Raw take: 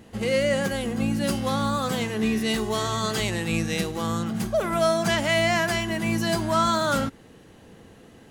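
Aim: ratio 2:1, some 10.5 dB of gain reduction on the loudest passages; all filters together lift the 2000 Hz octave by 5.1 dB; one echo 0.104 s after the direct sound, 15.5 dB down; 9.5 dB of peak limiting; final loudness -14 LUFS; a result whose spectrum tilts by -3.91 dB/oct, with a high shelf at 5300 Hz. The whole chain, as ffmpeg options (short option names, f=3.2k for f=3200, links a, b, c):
-af "equalizer=f=2k:t=o:g=7,highshelf=f=5.3k:g=-8.5,acompressor=threshold=-36dB:ratio=2,alimiter=level_in=4.5dB:limit=-24dB:level=0:latency=1,volume=-4.5dB,aecho=1:1:104:0.168,volume=22.5dB"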